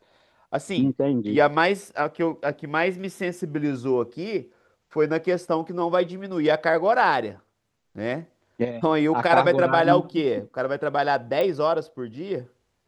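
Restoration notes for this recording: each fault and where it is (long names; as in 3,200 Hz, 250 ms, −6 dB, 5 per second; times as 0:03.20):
0:11.41: click −14 dBFS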